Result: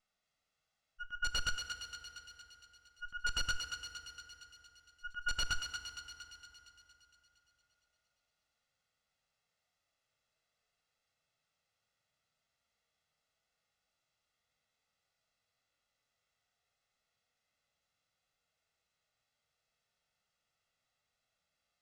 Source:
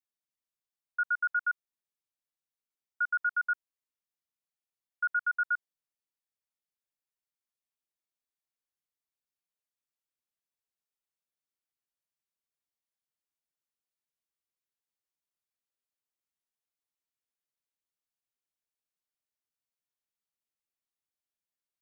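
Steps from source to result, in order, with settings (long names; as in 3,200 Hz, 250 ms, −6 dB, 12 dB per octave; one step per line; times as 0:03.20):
lower of the sound and its delayed copy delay 1.5 ms
dynamic equaliser 1,100 Hz, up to −4 dB, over −42 dBFS, Q 1
volume swells 712 ms
in parallel at 0 dB: compressor whose output falls as the input rises −47 dBFS, ratio −1
on the sum: harmonic and percussive parts rebalanced percussive −17 dB
wrap-around overflow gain 35.5 dB
high-frequency loss of the air 100 metres
on a send: feedback echo with a high-pass in the loop 231 ms, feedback 63%, high-pass 1,200 Hz, level −6 dB
on the sum: feedback delay network reverb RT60 3.6 s, high-frequency decay 0.6×, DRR 9 dB
level +9.5 dB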